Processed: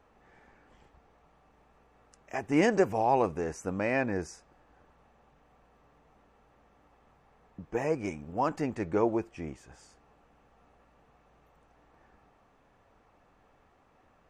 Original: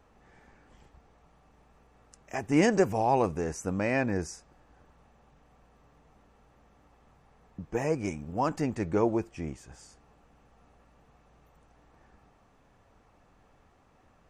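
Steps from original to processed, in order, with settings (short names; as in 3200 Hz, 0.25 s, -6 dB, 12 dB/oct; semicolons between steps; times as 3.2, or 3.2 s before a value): tone controls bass -5 dB, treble -6 dB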